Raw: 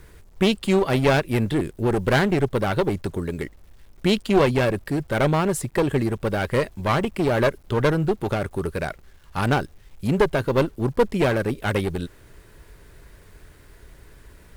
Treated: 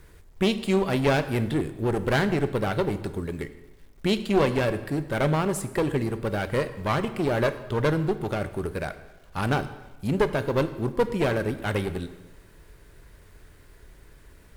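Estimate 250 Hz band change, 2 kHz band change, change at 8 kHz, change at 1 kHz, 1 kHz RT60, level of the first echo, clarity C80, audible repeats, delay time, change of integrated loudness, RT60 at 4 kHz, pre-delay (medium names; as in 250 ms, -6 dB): -3.5 dB, -3.5 dB, -3.5 dB, -3.5 dB, 1.1 s, no echo, 14.5 dB, no echo, no echo, -3.5 dB, 0.95 s, 14 ms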